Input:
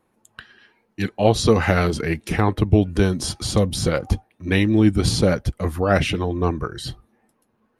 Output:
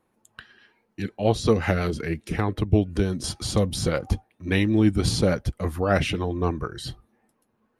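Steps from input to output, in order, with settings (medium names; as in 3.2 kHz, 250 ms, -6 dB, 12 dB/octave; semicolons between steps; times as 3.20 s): 1.00–3.24 s: rotary cabinet horn 5.5 Hz; trim -3.5 dB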